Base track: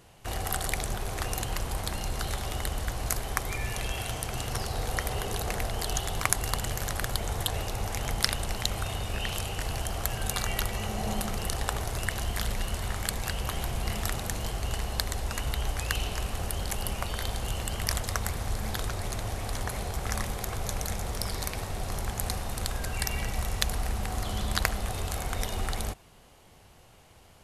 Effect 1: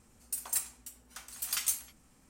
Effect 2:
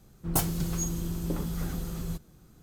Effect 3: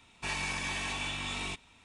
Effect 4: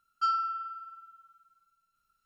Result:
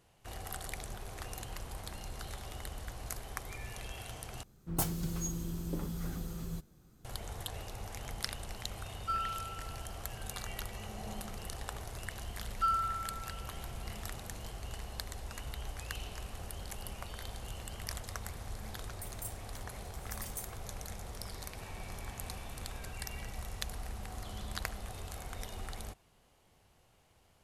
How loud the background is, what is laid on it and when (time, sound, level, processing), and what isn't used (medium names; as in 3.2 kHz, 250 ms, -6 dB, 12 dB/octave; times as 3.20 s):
base track -11.5 dB
4.43 s: replace with 2 -6 dB
8.86 s: add 4 -7 dB + low-pass 3.8 kHz
12.40 s: add 4 -13.5 dB + peaking EQ 1.5 kHz +11.5 dB 1.7 oct
18.69 s: add 1 -14.5 dB + differentiator
21.37 s: add 3 -15.5 dB + treble shelf 3.4 kHz -12 dB